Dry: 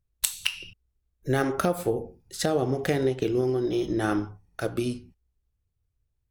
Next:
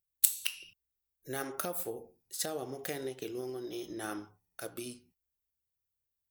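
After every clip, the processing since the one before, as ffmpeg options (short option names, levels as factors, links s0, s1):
-af "aemphasis=mode=production:type=bsi,volume=0.266"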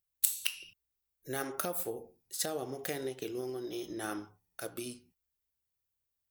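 -af "alimiter=level_in=1.88:limit=0.891:release=50:level=0:latency=1,volume=0.596"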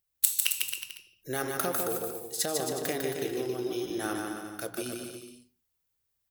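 -af "aecho=1:1:150|270|366|442.8|504.2:0.631|0.398|0.251|0.158|0.1,volume=1.58"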